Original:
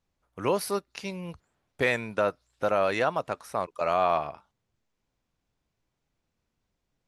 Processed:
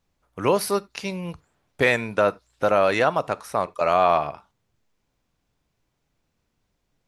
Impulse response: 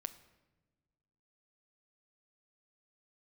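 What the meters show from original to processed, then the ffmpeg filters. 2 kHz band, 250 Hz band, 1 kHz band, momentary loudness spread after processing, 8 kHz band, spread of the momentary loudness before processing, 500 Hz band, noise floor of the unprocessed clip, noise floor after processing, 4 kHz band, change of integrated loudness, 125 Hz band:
+6.0 dB, +6.0 dB, +6.0 dB, 12 LU, +6.0 dB, 12 LU, +6.0 dB, −82 dBFS, −75 dBFS, +6.0 dB, +6.0 dB, +6.0 dB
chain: -filter_complex "[0:a]asplit=2[link_01][link_02];[1:a]atrim=start_sample=2205,atrim=end_sample=3969[link_03];[link_02][link_03]afir=irnorm=-1:irlink=0,volume=2.5dB[link_04];[link_01][link_04]amix=inputs=2:normalize=0"

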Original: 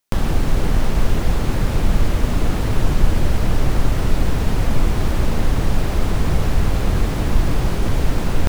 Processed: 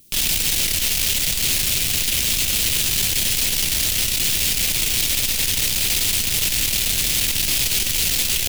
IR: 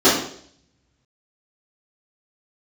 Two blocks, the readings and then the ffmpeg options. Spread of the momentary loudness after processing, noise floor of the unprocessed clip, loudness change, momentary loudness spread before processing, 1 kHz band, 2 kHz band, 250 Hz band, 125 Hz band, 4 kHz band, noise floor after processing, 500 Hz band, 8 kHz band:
1 LU, −21 dBFS, +4.0 dB, 1 LU, −11.5 dB, +5.5 dB, −12.0 dB, −13.0 dB, +15.0 dB, −22 dBFS, −11.5 dB, +18.5 dB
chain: -filter_complex "[0:a]aeval=exprs='0.841*(cos(1*acos(clip(val(0)/0.841,-1,1)))-cos(1*PI/2))+0.0422*(cos(8*acos(clip(val(0)/0.841,-1,1)))-cos(8*PI/2))':channel_layout=same,acrossover=split=320[link_01][link_02];[link_01]acompressor=mode=upward:threshold=-27dB:ratio=2.5[link_03];[link_03][link_02]amix=inputs=2:normalize=0,aeval=exprs='0.224*(abs(mod(val(0)/0.224+3,4)-2)-1)':channel_layout=same,crystalizer=i=5:c=0,asoftclip=type=tanh:threshold=-15.5dB,highshelf=frequency=1800:width_type=q:width=1.5:gain=14,volume=-8dB"

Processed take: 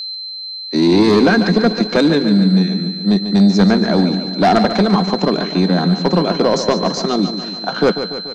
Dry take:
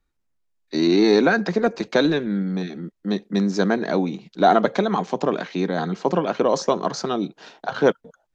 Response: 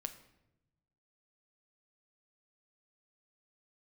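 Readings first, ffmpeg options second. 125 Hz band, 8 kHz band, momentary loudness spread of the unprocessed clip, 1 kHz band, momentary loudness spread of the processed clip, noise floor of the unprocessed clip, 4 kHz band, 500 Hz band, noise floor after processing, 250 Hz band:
+11.5 dB, can't be measured, 11 LU, +4.0 dB, 9 LU, −72 dBFS, +12.5 dB, +4.0 dB, −28 dBFS, +9.0 dB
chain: -filter_complex "[0:a]aeval=exprs='val(0)+0.0398*sin(2*PI*4100*n/s)':channel_layout=same,lowshelf=frequency=120:width_type=q:width=3:gain=-14,aeval=exprs='0.841*(cos(1*acos(clip(val(0)/0.841,-1,1)))-cos(1*PI/2))+0.237*(cos(5*acos(clip(val(0)/0.841,-1,1)))-cos(5*PI/2))+0.0473*(cos(7*acos(clip(val(0)/0.841,-1,1)))-cos(7*PI/2))':channel_layout=same,asplit=2[link_01][link_02];[link_02]aecho=0:1:144|288|432|576|720|864|1008:0.316|0.187|0.11|0.0649|0.0383|0.0226|0.0133[link_03];[link_01][link_03]amix=inputs=2:normalize=0,volume=-1.5dB"

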